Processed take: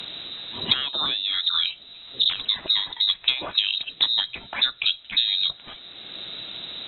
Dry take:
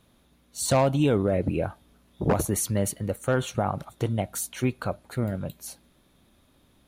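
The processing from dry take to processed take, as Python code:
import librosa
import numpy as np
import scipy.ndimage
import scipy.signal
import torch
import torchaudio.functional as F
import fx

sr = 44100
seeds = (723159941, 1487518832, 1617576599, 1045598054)

y = fx.freq_invert(x, sr, carrier_hz=3900)
y = fx.env_lowpass_down(y, sr, base_hz=1500.0, full_db=-18.5)
y = fx.band_squash(y, sr, depth_pct=70)
y = y * 10.0 ** (7.5 / 20.0)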